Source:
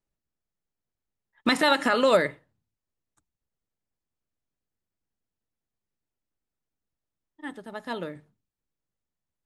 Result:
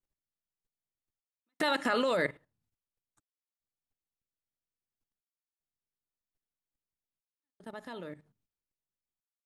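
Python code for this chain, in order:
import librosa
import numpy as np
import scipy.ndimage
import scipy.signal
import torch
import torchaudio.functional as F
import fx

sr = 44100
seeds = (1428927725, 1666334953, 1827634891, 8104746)

y = fx.step_gate(x, sr, bpm=75, pattern='xxxxxx..xx', floor_db=-60.0, edge_ms=4.5)
y = fx.level_steps(y, sr, step_db=14)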